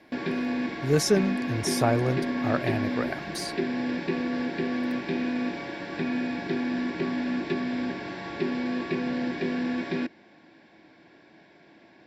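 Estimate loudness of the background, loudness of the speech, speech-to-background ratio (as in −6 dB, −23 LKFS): −30.0 LKFS, −28.0 LKFS, 2.0 dB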